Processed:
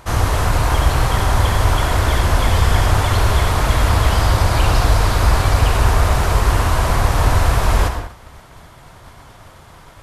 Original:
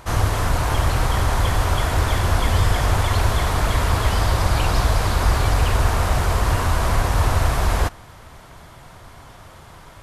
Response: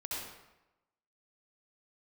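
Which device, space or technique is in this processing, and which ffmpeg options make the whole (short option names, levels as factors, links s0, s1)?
keyed gated reverb: -filter_complex "[0:a]asplit=3[s0][s1][s2];[1:a]atrim=start_sample=2205[s3];[s1][s3]afir=irnorm=-1:irlink=0[s4];[s2]apad=whole_len=442100[s5];[s4][s5]sidechaingate=range=0.0224:threshold=0.01:ratio=16:detection=peak,volume=0.631[s6];[s0][s6]amix=inputs=2:normalize=0"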